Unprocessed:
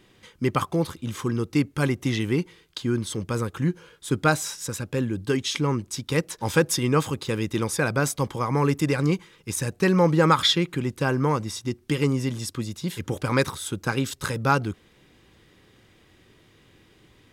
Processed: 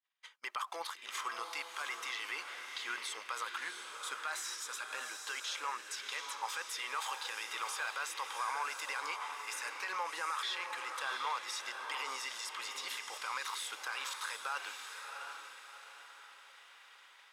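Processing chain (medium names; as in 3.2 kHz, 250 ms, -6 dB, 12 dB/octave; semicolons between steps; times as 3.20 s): level rider; high-pass 890 Hz 24 dB/octave; expander -48 dBFS; transient shaper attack +8 dB, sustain +3 dB; peak limiter -19 dBFS, peak gain reduction 24.5 dB; treble shelf 7 kHz -9 dB; echo that smears into a reverb 707 ms, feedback 42%, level -5 dB; trim -9 dB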